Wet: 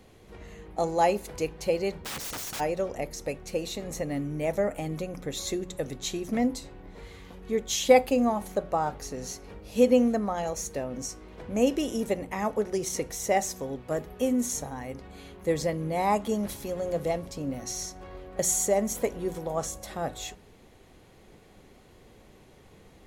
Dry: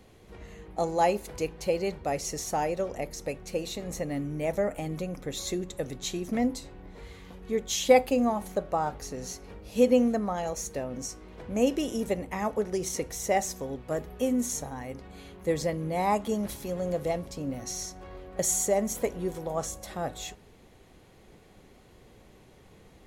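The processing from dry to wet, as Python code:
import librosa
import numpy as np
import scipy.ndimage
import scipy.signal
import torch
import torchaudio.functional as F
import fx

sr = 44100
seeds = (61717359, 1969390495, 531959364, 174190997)

y = fx.hum_notches(x, sr, base_hz=60, count=3)
y = fx.overflow_wrap(y, sr, gain_db=31.5, at=(1.94, 2.59), fade=0.02)
y = y * librosa.db_to_amplitude(1.0)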